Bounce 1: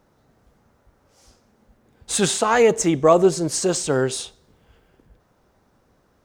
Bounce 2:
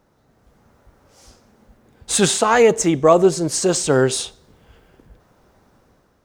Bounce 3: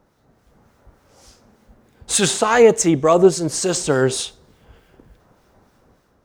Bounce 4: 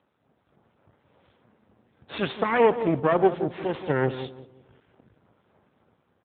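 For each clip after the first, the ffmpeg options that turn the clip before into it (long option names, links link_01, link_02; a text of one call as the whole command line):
ffmpeg -i in.wav -af "dynaudnorm=framelen=210:gausssize=5:maxgain=6dB" out.wav
ffmpeg -i in.wav -filter_complex "[0:a]acrossover=split=1500[link_01][link_02];[link_01]aeval=exprs='val(0)*(1-0.5/2+0.5/2*cos(2*PI*3.4*n/s))':channel_layout=same[link_03];[link_02]aeval=exprs='val(0)*(1-0.5/2-0.5/2*cos(2*PI*3.4*n/s))':channel_layout=same[link_04];[link_03][link_04]amix=inputs=2:normalize=0,volume=2.5dB" out.wav
ffmpeg -i in.wav -filter_complex "[0:a]aeval=exprs='max(val(0),0)':channel_layout=same,asplit=2[link_01][link_02];[link_02]adelay=175,lowpass=frequency=830:poles=1,volume=-10dB,asplit=2[link_03][link_04];[link_04]adelay=175,lowpass=frequency=830:poles=1,volume=0.35,asplit=2[link_05][link_06];[link_06]adelay=175,lowpass=frequency=830:poles=1,volume=0.35,asplit=2[link_07][link_08];[link_08]adelay=175,lowpass=frequency=830:poles=1,volume=0.35[link_09];[link_01][link_03][link_05][link_07][link_09]amix=inputs=5:normalize=0,volume=-3dB" -ar 8000 -c:a libopencore_amrnb -b:a 10200 out.amr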